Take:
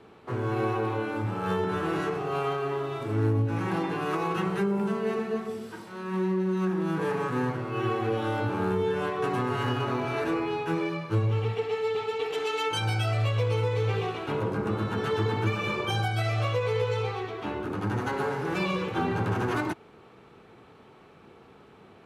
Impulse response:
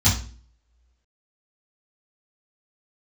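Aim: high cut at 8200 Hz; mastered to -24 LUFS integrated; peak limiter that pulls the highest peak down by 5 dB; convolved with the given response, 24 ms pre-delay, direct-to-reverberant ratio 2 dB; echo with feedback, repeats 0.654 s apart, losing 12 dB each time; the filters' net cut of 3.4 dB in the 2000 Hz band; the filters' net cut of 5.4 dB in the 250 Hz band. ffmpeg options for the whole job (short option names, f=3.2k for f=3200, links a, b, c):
-filter_complex "[0:a]lowpass=8.2k,equalizer=f=250:t=o:g=-8.5,equalizer=f=2k:t=o:g=-4.5,alimiter=limit=-23dB:level=0:latency=1,aecho=1:1:654|1308|1962:0.251|0.0628|0.0157,asplit=2[a][b];[1:a]atrim=start_sample=2205,adelay=24[c];[b][c]afir=irnorm=-1:irlink=0,volume=-17.5dB[d];[a][d]amix=inputs=2:normalize=0,volume=-3dB"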